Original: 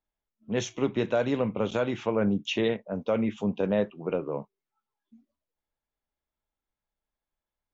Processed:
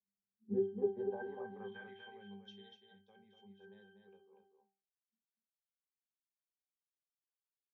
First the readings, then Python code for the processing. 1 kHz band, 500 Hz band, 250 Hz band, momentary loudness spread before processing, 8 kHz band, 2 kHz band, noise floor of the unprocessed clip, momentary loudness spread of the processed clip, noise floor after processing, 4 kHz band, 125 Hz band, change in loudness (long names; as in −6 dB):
−17.0 dB, −13.0 dB, −18.5 dB, 6 LU, can't be measured, −17.5 dB, below −85 dBFS, 23 LU, below −85 dBFS, −21.0 dB, −21.0 dB, −12.0 dB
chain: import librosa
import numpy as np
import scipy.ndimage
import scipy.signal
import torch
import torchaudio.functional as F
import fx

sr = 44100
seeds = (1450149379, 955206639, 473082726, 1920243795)

y = fx.filter_sweep_bandpass(x, sr, from_hz=200.0, to_hz=5300.0, start_s=0.19, end_s=2.51, q=2.6)
y = fx.octave_resonator(y, sr, note='G', decay_s=0.37)
y = y + 10.0 ** (-6.0 / 20.0) * np.pad(y, (int(242 * sr / 1000.0), 0))[:len(y)]
y = F.gain(torch.from_numpy(y), 12.5).numpy()